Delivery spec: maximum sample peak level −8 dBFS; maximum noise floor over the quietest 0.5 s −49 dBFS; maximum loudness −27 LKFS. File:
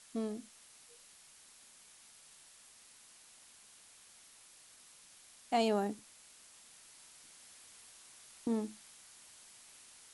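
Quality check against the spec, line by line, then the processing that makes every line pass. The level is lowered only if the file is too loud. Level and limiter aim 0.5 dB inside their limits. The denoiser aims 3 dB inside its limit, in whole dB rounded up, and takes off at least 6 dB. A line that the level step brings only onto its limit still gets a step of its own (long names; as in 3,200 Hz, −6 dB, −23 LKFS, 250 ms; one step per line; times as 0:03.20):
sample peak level −19.5 dBFS: in spec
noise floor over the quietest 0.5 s −60 dBFS: in spec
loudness −36.5 LKFS: in spec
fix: no processing needed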